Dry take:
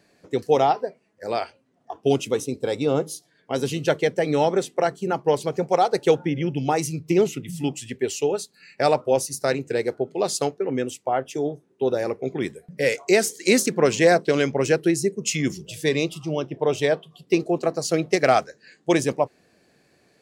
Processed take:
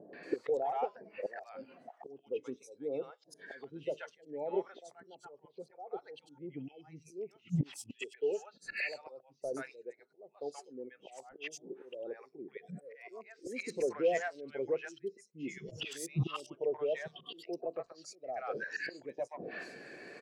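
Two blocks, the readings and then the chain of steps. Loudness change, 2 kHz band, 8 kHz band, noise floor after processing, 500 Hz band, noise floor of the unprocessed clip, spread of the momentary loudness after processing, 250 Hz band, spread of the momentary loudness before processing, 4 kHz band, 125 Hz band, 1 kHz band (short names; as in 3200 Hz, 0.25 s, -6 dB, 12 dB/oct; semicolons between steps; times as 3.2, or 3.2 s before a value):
-16.5 dB, -14.0 dB, -22.0 dB, -69 dBFS, -16.5 dB, -63 dBFS, 16 LU, -19.5 dB, 9 LU, -18.0 dB, -13.5 dB, -18.5 dB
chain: gate -52 dBFS, range -7 dB; in parallel at 0 dB: limiter -15.5 dBFS, peak gain reduction 10.5 dB; on the sum: flipped gate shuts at -17 dBFS, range -35 dB; auto swell 0.366 s; overdrive pedal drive 29 dB, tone 3600 Hz, clips at -21.5 dBFS; three bands offset in time lows, mids, highs 0.13/0.23 s, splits 760/4100 Hz; spectral expander 1.5:1; gain +1 dB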